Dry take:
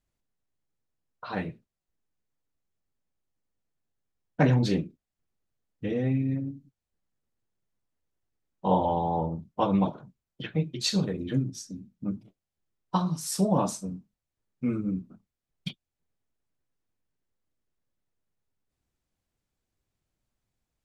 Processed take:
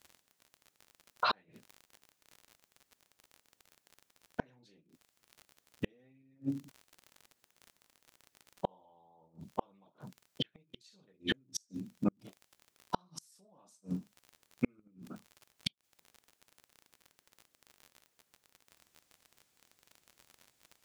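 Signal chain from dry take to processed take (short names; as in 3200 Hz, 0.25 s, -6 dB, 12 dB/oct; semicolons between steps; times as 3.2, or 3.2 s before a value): HPF 410 Hz 6 dB/oct; high shelf 2200 Hz +5.5 dB; in parallel at -1.5 dB: negative-ratio compressor -32 dBFS, ratio -0.5; on the sum: crackle 43/s -44 dBFS; flipped gate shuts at -21 dBFS, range -42 dB; gain +3.5 dB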